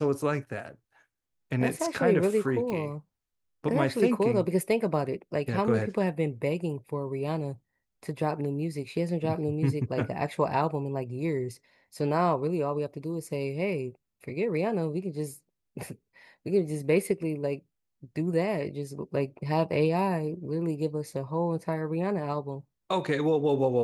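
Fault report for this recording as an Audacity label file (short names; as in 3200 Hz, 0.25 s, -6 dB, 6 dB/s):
2.700000	2.700000	pop -21 dBFS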